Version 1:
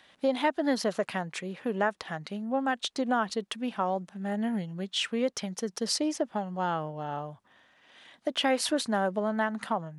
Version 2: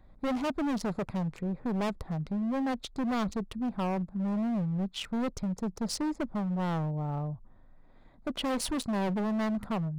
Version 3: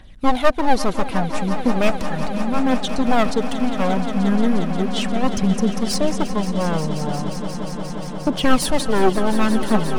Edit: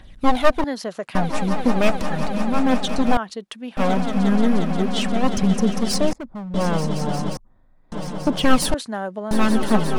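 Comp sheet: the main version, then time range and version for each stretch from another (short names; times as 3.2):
3
0.64–1.15 from 1
3.17–3.77 from 1
6.13–6.54 from 2
7.37–7.92 from 2
8.74–9.31 from 1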